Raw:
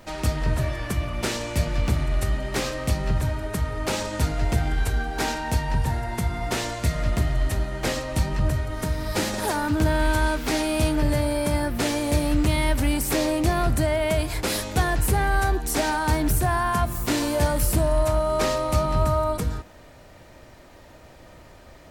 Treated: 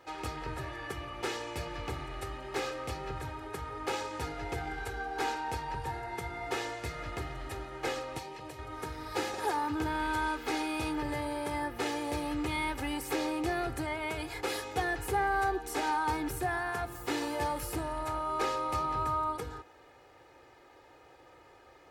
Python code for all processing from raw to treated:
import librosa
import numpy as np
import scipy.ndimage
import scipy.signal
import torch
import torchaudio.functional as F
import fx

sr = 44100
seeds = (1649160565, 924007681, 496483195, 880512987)

y = fx.chain(x, sr, fx.highpass(hz=450.0, slope=6),
    fx.peak_eq(hz=1400.0, db=-11.0, octaves=0.58), at=(8.18, 8.59))
y = fx.highpass(y, sr, hz=450.0, slope=6)
y = fx.high_shelf(y, sr, hz=3800.0, db=-12.0)
y = y + 0.71 * np.pad(y, (int(2.4 * sr / 1000.0), 0))[:len(y)]
y = F.gain(torch.from_numpy(y), -5.5).numpy()